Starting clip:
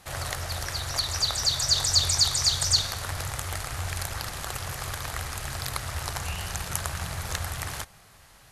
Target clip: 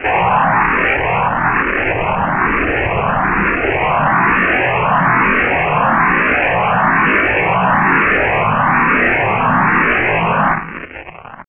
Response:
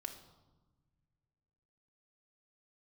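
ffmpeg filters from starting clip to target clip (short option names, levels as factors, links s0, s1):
-filter_complex "[0:a]asetrate=83250,aresample=44100,atempo=0.529732,highpass=f=230:w=0.5412,highpass=f=230:w=1.3066,asplit=2[s0][s1];[s1]adelay=14,volume=0.398[s2];[s0][s2]amix=inputs=2:normalize=0,asplit=2[s3][s4];[s4]highpass=f=720:p=1,volume=44.7,asoftclip=type=tanh:threshold=0.422[s5];[s3][s5]amix=inputs=2:normalize=0,lowpass=f=1200:p=1,volume=0.501,acrusher=bits=4:mix=0:aa=0.5,aresample=8000,aresample=44100,asetrate=32678,aresample=44100,dynaudnorm=f=280:g=11:m=1.58,asplit=2[s6][s7];[1:a]atrim=start_sample=2205[s8];[s7][s8]afir=irnorm=-1:irlink=0,volume=0.447[s9];[s6][s9]amix=inputs=2:normalize=0,alimiter=level_in=7.08:limit=0.891:release=50:level=0:latency=1,asplit=2[s10][s11];[s11]afreqshift=1.1[s12];[s10][s12]amix=inputs=2:normalize=1,volume=0.841"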